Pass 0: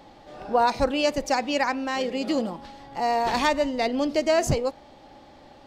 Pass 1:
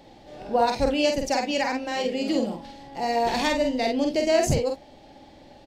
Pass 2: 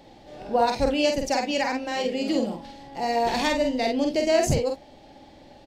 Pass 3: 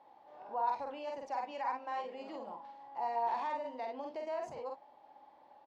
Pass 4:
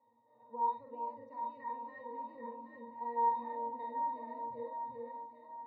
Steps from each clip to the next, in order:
peaking EQ 1.2 kHz -10 dB 0.71 oct; on a send: early reflections 47 ms -4 dB, 66 ms -15.5 dB
no audible change
peak limiter -18.5 dBFS, peak gain reduction 8.5 dB; band-pass filter 990 Hz, Q 4.2
pitch-class resonator A#, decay 0.23 s; echo whose repeats swap between lows and highs 389 ms, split 820 Hz, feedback 69%, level -2 dB; trim +8 dB

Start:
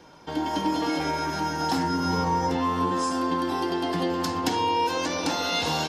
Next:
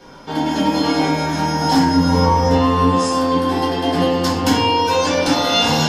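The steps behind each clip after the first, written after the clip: simulated room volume 30 m³, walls mixed, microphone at 1.1 m; trim +3 dB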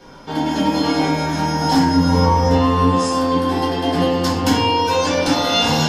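bass shelf 120 Hz +3.5 dB; trim -1 dB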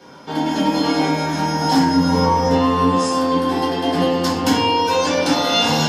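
high-pass 130 Hz 12 dB/octave

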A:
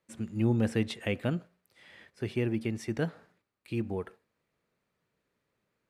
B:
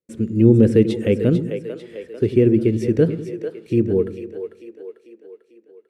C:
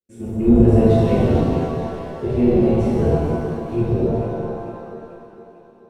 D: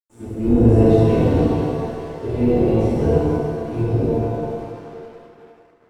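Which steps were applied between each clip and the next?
resonant low shelf 590 Hz +9 dB, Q 3; gate with hold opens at -46 dBFS; two-band feedback delay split 380 Hz, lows 98 ms, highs 445 ms, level -9 dB; trim +3 dB
octave divider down 1 oct, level +1 dB; pitch-shifted reverb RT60 2 s, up +7 st, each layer -8 dB, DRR -10.5 dB; trim -13 dB
crossover distortion -46.5 dBFS; FDN reverb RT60 0.82 s, low-frequency decay 0.7×, high-frequency decay 0.85×, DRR -1.5 dB; trim -3.5 dB

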